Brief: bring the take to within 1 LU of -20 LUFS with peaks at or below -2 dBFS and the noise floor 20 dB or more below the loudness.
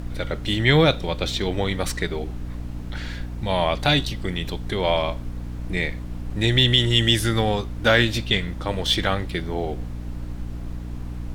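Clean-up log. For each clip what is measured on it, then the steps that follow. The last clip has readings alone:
hum 60 Hz; harmonics up to 300 Hz; hum level -30 dBFS; noise floor -33 dBFS; noise floor target -42 dBFS; loudness -22.0 LUFS; peak -2.0 dBFS; loudness target -20.0 LUFS
-> de-hum 60 Hz, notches 5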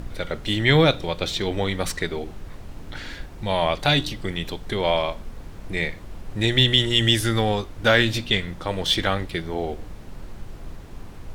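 hum none; noise floor -41 dBFS; noise floor target -43 dBFS
-> noise print and reduce 6 dB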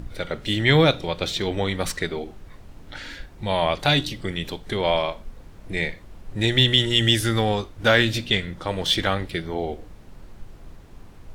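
noise floor -46 dBFS; loudness -22.0 LUFS; peak -2.5 dBFS; loudness target -20.0 LUFS
-> gain +2 dB; limiter -2 dBFS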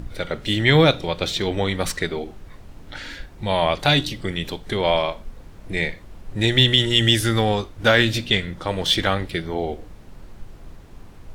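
loudness -20.5 LUFS; peak -2.0 dBFS; noise floor -44 dBFS

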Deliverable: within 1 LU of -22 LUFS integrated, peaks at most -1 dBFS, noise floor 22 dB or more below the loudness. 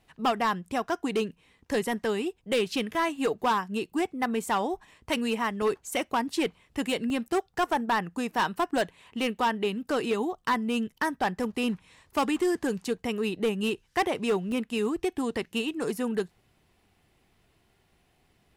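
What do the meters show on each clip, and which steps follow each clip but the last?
clipped 1.6%; flat tops at -20.0 dBFS; dropouts 4; longest dropout 1.2 ms; loudness -29.0 LUFS; peak -20.0 dBFS; loudness target -22.0 LUFS
-> clip repair -20 dBFS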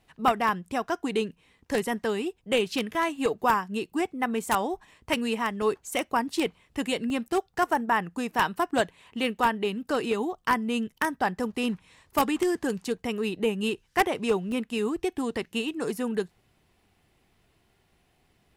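clipped 0.0%; dropouts 4; longest dropout 1.2 ms
-> interpolate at 2.95/5.62/7.1/14.52, 1.2 ms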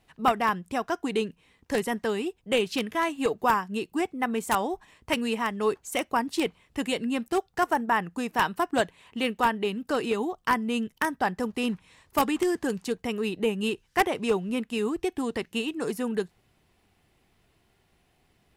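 dropouts 0; loudness -28.0 LUFS; peak -11.0 dBFS; loudness target -22.0 LUFS
-> gain +6 dB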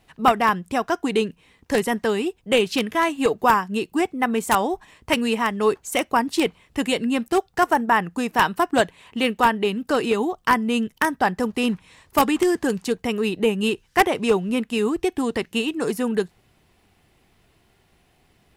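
loudness -22.0 LUFS; peak -5.0 dBFS; noise floor -62 dBFS

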